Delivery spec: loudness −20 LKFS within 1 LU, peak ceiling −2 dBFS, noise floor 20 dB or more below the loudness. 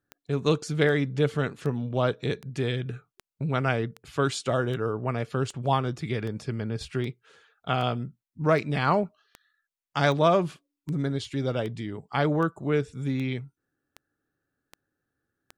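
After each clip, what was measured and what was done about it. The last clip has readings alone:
number of clicks 21; integrated loudness −28.0 LKFS; sample peak −6.5 dBFS; target loudness −20.0 LKFS
→ click removal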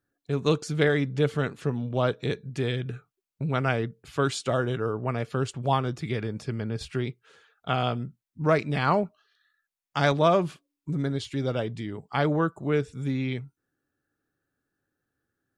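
number of clicks 0; integrated loudness −28.0 LKFS; sample peak −6.5 dBFS; target loudness −20.0 LKFS
→ level +8 dB
brickwall limiter −2 dBFS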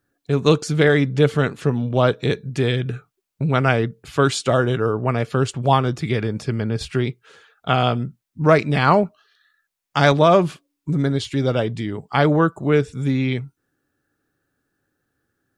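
integrated loudness −20.0 LKFS; sample peak −2.0 dBFS; background noise floor −79 dBFS

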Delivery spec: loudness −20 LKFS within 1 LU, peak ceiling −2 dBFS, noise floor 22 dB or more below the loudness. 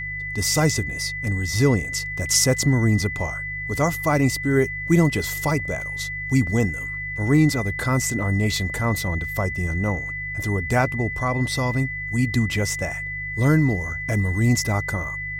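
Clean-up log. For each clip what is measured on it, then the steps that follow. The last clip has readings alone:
mains hum 50 Hz; hum harmonics up to 150 Hz; level of the hum −34 dBFS; interfering tone 2,000 Hz; level of the tone −28 dBFS; integrated loudness −22.0 LKFS; sample peak −6.0 dBFS; target loudness −20.0 LKFS
→ hum removal 50 Hz, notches 3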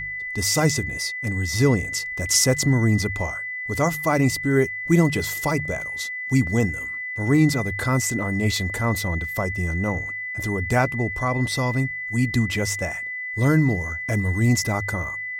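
mains hum none found; interfering tone 2,000 Hz; level of the tone −28 dBFS
→ notch filter 2,000 Hz, Q 30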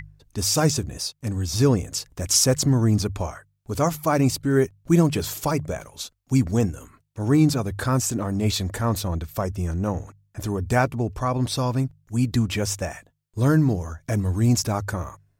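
interfering tone none found; integrated loudness −23.5 LKFS; sample peak −6.5 dBFS; target loudness −20.0 LKFS
→ level +3.5 dB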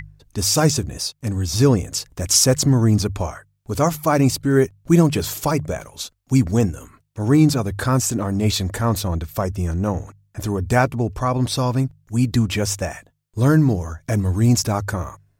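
integrated loudness −20.0 LKFS; sample peak −3.0 dBFS; background noise floor −64 dBFS

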